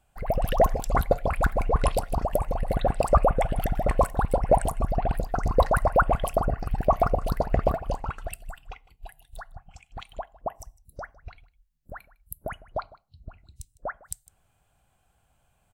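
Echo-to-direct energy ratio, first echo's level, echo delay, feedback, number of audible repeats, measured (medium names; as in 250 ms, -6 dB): -21.0 dB, -21.0 dB, 155 ms, no regular repeats, 1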